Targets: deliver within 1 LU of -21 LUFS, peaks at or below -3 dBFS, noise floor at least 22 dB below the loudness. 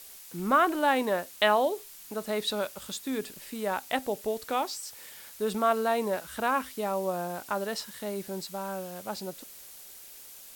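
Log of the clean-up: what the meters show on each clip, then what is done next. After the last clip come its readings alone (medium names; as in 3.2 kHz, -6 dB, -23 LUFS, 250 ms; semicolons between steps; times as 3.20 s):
noise floor -48 dBFS; noise floor target -52 dBFS; loudness -30.0 LUFS; peak level -10.0 dBFS; loudness target -21.0 LUFS
-> noise print and reduce 6 dB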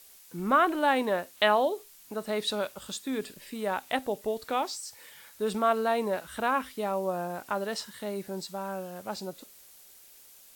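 noise floor -54 dBFS; loudness -30.0 LUFS; peak level -10.0 dBFS; loudness target -21.0 LUFS
-> trim +9 dB; peak limiter -3 dBFS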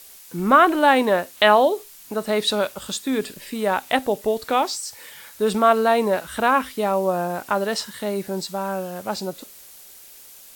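loudness -21.0 LUFS; peak level -3.0 dBFS; noise floor -45 dBFS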